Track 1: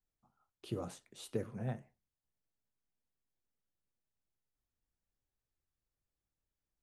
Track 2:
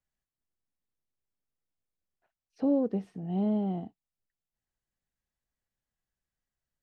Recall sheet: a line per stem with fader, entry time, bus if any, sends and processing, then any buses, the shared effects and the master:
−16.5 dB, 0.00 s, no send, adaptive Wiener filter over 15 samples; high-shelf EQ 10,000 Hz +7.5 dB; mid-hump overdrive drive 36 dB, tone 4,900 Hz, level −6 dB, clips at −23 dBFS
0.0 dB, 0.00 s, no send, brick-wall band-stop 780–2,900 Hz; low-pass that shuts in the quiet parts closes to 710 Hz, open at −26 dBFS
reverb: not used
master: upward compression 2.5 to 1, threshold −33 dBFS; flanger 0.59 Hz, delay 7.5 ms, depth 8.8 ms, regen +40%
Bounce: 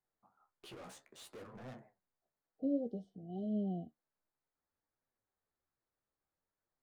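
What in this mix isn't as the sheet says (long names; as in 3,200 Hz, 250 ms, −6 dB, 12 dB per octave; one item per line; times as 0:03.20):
stem 2 0.0 dB → −6.0 dB
master: missing upward compression 2.5 to 1, threshold −33 dBFS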